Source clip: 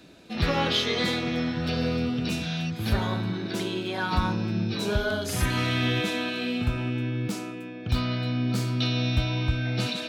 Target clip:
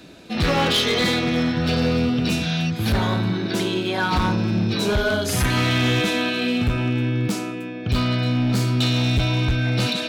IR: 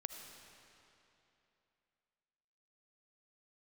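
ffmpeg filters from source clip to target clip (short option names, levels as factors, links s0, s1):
-af "asoftclip=type=hard:threshold=0.0794,volume=2.24"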